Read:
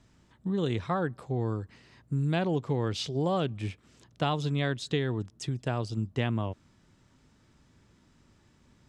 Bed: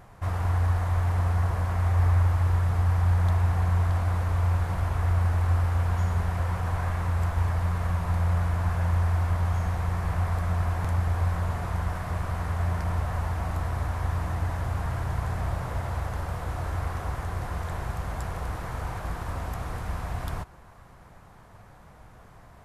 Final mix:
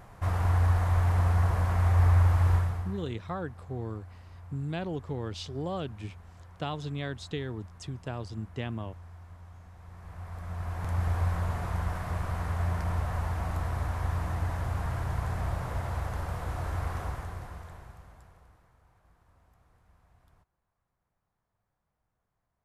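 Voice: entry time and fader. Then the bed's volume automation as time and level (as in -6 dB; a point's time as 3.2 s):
2.40 s, -6.0 dB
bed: 2.55 s 0 dB
3.15 s -23.5 dB
9.72 s -23.5 dB
11.05 s -2.5 dB
17.02 s -2.5 dB
18.78 s -31.5 dB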